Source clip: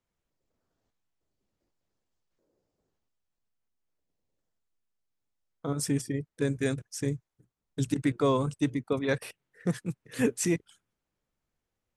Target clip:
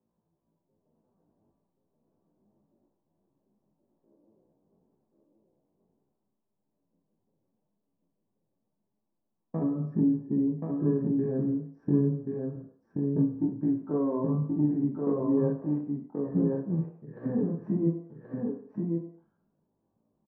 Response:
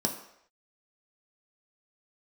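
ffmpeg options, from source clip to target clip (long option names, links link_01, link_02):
-filter_complex "[0:a]lowpass=frequency=1100:width=0.5412,lowpass=frequency=1100:width=1.3066,acompressor=threshold=-36dB:ratio=10,asoftclip=type=tanh:threshold=-26.5dB,flanger=delay=18:depth=7.1:speed=0.25,atempo=0.59,aecho=1:1:1079:0.668[link_01];[1:a]atrim=start_sample=2205,afade=type=out:start_time=0.36:duration=0.01,atrim=end_sample=16317[link_02];[link_01][link_02]afir=irnorm=-1:irlink=0,volume=1.5dB"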